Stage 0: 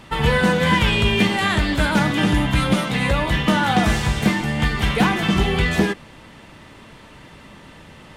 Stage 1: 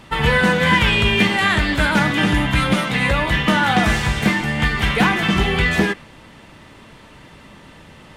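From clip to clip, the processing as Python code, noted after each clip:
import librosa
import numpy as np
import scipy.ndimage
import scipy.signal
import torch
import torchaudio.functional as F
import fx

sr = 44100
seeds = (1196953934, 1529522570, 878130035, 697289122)

y = fx.dynamic_eq(x, sr, hz=1900.0, q=0.92, threshold_db=-35.0, ratio=4.0, max_db=5)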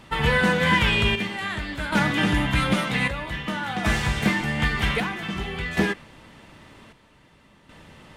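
y = fx.chopper(x, sr, hz=0.52, depth_pct=60, duty_pct=60)
y = y * 10.0 ** (-4.5 / 20.0)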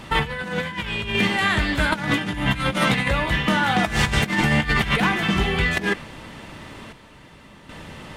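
y = fx.over_compress(x, sr, threshold_db=-26.0, ratio=-0.5)
y = y * 10.0 ** (5.5 / 20.0)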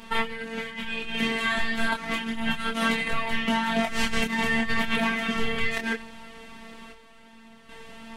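y = fx.robotise(x, sr, hz=226.0)
y = fx.chorus_voices(y, sr, voices=4, hz=0.28, base_ms=25, depth_ms=4.8, mix_pct=40)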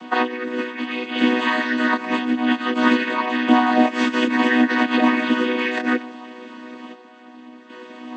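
y = fx.chord_vocoder(x, sr, chord='major triad', root=59)
y = y * 10.0 ** (8.5 / 20.0)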